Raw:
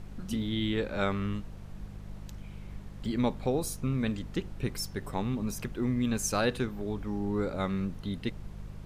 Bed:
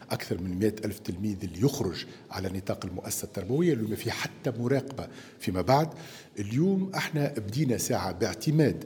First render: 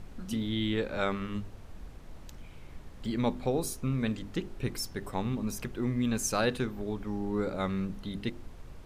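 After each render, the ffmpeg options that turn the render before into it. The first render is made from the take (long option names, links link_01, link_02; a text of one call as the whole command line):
ffmpeg -i in.wav -af "bandreject=frequency=50:width_type=h:width=4,bandreject=frequency=100:width_type=h:width=4,bandreject=frequency=150:width_type=h:width=4,bandreject=frequency=200:width_type=h:width=4,bandreject=frequency=250:width_type=h:width=4,bandreject=frequency=300:width_type=h:width=4,bandreject=frequency=350:width_type=h:width=4,bandreject=frequency=400:width_type=h:width=4" out.wav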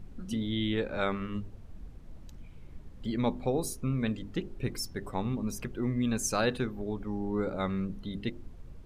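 ffmpeg -i in.wav -af "afftdn=noise_reduction=9:noise_floor=-48" out.wav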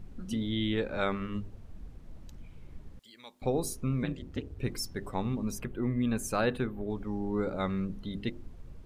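ffmpeg -i in.wav -filter_complex "[0:a]asettb=1/sr,asplit=3[link_01][link_02][link_03];[link_01]atrim=end=2.994[link_04];[link_02]atrim=start=2.99:end=3.42,asetpts=PTS-STARTPTS,afade=type=in:duration=0.004:curve=qsin,afade=type=out:start_time=0.426:duration=0.004:curve=qsin,aderivative[link_05];[link_03]atrim=start=3.416[link_06];[link_04][link_05]acrossfade=duration=0.004:curve1=hsin:curve2=qsin[link_07];[link_07][link_06]acrossfade=duration=0.004:curve1=qsin:curve2=hsin,asettb=1/sr,asplit=3[link_08][link_09][link_10];[link_08]atrim=end=4.034[link_11];[link_09]atrim=start=4.03:end=4.59,asetpts=PTS-STARTPTS,afade=type=in:duration=0.004:curve=qsin,afade=type=out:start_time=0.556:duration=0.004:curve=qsin,aeval=exprs='val(0)*sin(2*PI*68*n/s)':channel_layout=same[link_12];[link_10]atrim=start=4.586[link_13];[link_11][link_12]acrossfade=duration=0.004:curve1=hsin:curve2=qsin[link_14];[link_14][link_13]acrossfade=duration=0.004:curve1=qsin:curve2=hsin,asettb=1/sr,asplit=3[link_15][link_16][link_17];[link_15]atrim=end=5.594[link_18];[link_16]atrim=start=5.59:end=6.9,asetpts=PTS-STARTPTS,afade=type=in:duration=0.004:curve=qsin,afade=type=out:start_time=1.306:duration=0.004:curve=qsin,equalizer=frequency=5600:width=1.3:gain=-10.5[link_19];[link_17]atrim=start=6.896[link_20];[link_18][link_19]acrossfade=duration=0.004:curve1=hsin:curve2=qsin[link_21];[link_21][link_20]acrossfade=duration=0.004:curve1=qsin:curve2=hsin" out.wav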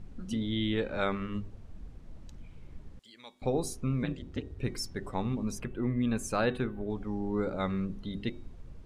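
ffmpeg -i in.wav -af "lowpass=9800,bandreject=frequency=375.5:width_type=h:width=4,bandreject=frequency=751:width_type=h:width=4,bandreject=frequency=1126.5:width_type=h:width=4,bandreject=frequency=1502:width_type=h:width=4,bandreject=frequency=1877.5:width_type=h:width=4,bandreject=frequency=2253:width_type=h:width=4,bandreject=frequency=2628.5:width_type=h:width=4,bandreject=frequency=3004:width_type=h:width=4,bandreject=frequency=3379.5:width_type=h:width=4,bandreject=frequency=3755:width_type=h:width=4" out.wav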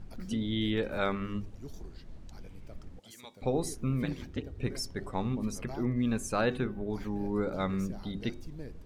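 ffmpeg -i in.wav -i bed.wav -filter_complex "[1:a]volume=-22dB[link_01];[0:a][link_01]amix=inputs=2:normalize=0" out.wav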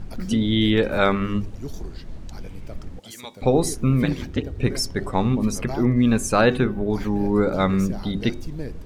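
ffmpeg -i in.wav -af "volume=11.5dB" out.wav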